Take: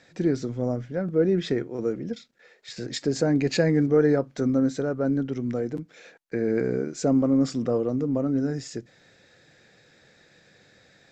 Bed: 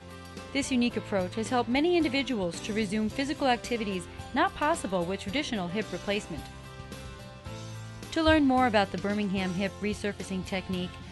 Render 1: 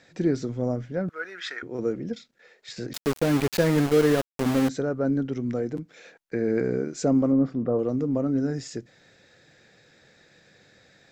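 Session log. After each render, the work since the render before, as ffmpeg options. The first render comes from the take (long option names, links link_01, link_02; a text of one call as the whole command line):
ffmpeg -i in.wav -filter_complex "[0:a]asettb=1/sr,asplit=3[link_01][link_02][link_03];[link_01]atrim=end=1.094[link_04];[link_02]atrim=start=1.09:end=1.63,asetpts=PTS-STARTPTS,afade=type=in:duration=0.004:curve=qsin,afade=type=out:start_time=0.536:duration=0.004:curve=qsin,highpass=frequency=1400:width_type=q:width=3.3[link_05];[link_03]atrim=start=1.626[link_06];[link_04][link_05]acrossfade=duration=0.004:curve1=hsin:curve2=qsin[link_07];[link_07][link_06]acrossfade=duration=0.004:curve1=qsin:curve2=hsin,asettb=1/sr,asplit=3[link_08][link_09][link_10];[link_08]atrim=end=2.934[link_11];[link_09]atrim=start=2.93:end=4.69,asetpts=PTS-STARTPTS,afade=type=in:duration=0.004:curve=qsin,afade=type=out:start_time=1.756:duration=0.004:curve=qsin,aeval=exprs='val(0)*gte(abs(val(0)),0.0596)':channel_layout=same[link_12];[link_10]atrim=start=4.686[link_13];[link_11][link_12]acrossfade=duration=0.004:curve1=hsin:curve2=qsin[link_14];[link_14][link_13]acrossfade=duration=0.004:curve1=qsin:curve2=hsin,asettb=1/sr,asplit=3[link_15][link_16][link_17];[link_15]atrim=end=7.324[link_18];[link_16]atrim=start=7.32:end=7.79,asetpts=PTS-STARTPTS,afade=type=in:duration=0.004:curve=qsin,afade=type=out:start_time=0.466:duration=0.004:curve=qsin,lowpass=1300[link_19];[link_17]atrim=start=7.786[link_20];[link_18][link_19]acrossfade=duration=0.004:curve1=hsin:curve2=qsin[link_21];[link_21][link_20]acrossfade=duration=0.004:curve1=qsin:curve2=hsin" out.wav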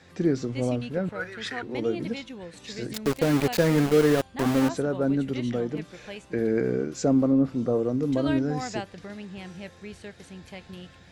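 ffmpeg -i in.wav -i bed.wav -filter_complex "[1:a]volume=-10dB[link_01];[0:a][link_01]amix=inputs=2:normalize=0" out.wav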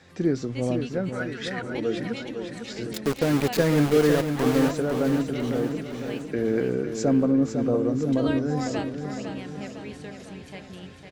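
ffmpeg -i in.wav -af "aecho=1:1:504|1008|1512|2016|2520|3024|3528:0.422|0.228|0.123|0.0664|0.0359|0.0194|0.0105" out.wav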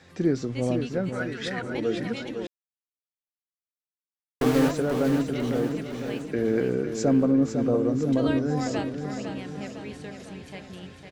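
ffmpeg -i in.wav -filter_complex "[0:a]asplit=3[link_01][link_02][link_03];[link_01]atrim=end=2.47,asetpts=PTS-STARTPTS,afade=type=out:start_time=2.466:duration=0.004:curve=hsin[link_04];[link_02]atrim=start=2.47:end=4.41,asetpts=PTS-STARTPTS,volume=0[link_05];[link_03]atrim=start=4.41,asetpts=PTS-STARTPTS,afade=type=in:duration=0.004:curve=hsin[link_06];[link_04][link_05][link_06]concat=n=3:v=0:a=1" out.wav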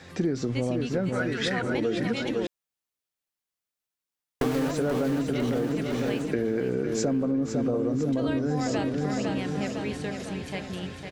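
ffmpeg -i in.wav -filter_complex "[0:a]asplit=2[link_01][link_02];[link_02]alimiter=limit=-21dB:level=0:latency=1:release=29,volume=1dB[link_03];[link_01][link_03]amix=inputs=2:normalize=0,acompressor=threshold=-23dB:ratio=6" out.wav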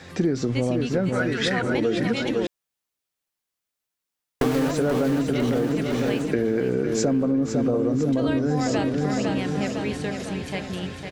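ffmpeg -i in.wav -af "volume=4dB" out.wav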